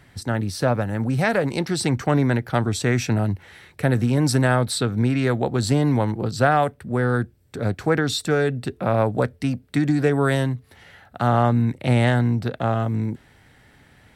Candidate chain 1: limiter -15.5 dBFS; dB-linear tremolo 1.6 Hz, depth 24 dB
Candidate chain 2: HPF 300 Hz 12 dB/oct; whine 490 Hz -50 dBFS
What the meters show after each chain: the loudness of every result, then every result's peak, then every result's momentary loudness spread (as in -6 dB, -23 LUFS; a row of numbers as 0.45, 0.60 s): -32.0, -25.0 LUFS; -15.5, -6.5 dBFS; 12, 10 LU